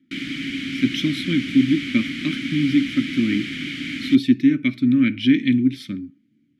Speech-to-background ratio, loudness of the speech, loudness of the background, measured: 8.0 dB, −20.0 LKFS, −28.0 LKFS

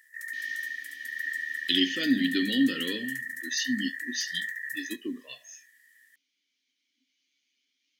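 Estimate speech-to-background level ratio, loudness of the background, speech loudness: 5.0 dB, −34.0 LKFS, −29.0 LKFS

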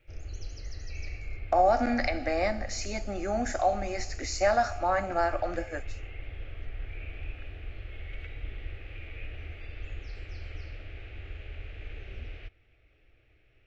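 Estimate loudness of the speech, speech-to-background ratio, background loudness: −29.0 LKFS, 14.0 dB, −43.0 LKFS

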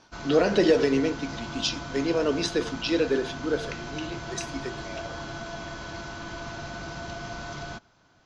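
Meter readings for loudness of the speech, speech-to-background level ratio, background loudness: −26.0 LKFS, 11.0 dB, −37.0 LKFS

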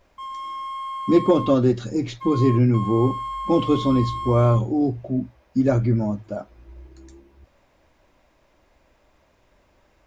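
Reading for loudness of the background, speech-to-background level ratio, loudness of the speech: −31.0 LKFS, 10.0 dB, −21.0 LKFS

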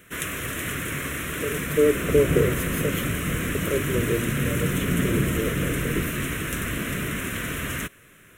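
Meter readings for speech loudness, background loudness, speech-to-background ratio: −27.5 LKFS, −26.5 LKFS, −1.0 dB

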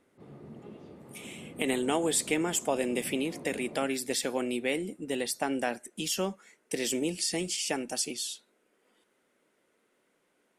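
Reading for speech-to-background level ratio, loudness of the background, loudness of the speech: 16.5 dB, −47.5 LKFS, −31.0 LKFS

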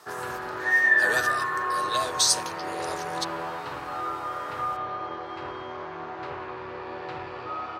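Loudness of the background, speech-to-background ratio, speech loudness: −28.0 LKFS, −0.5 dB, −28.5 LKFS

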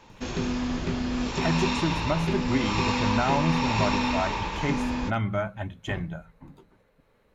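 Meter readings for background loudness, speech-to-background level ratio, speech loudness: −28.0 LKFS, −1.5 dB, −29.5 LKFS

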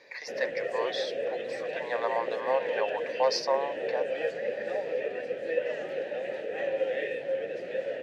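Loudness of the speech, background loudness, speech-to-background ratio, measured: −32.0 LKFS, −33.0 LKFS, 1.0 dB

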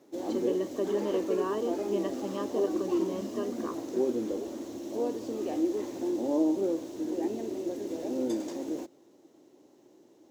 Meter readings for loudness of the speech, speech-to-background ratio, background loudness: −35.0 LKFS, −2.5 dB, −32.5 LKFS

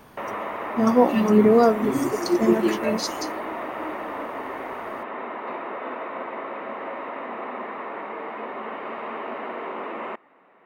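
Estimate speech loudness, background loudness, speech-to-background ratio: −20.5 LKFS, −32.5 LKFS, 12.0 dB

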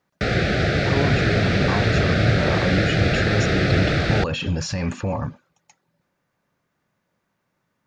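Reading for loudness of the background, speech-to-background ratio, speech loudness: −20.5 LKFS, −4.5 dB, −25.0 LKFS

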